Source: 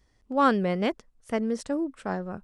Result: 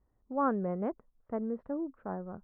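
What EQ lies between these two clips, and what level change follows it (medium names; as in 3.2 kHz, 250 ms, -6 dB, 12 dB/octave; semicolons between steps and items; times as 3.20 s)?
low-pass 1.3 kHz 24 dB/octave; -7.0 dB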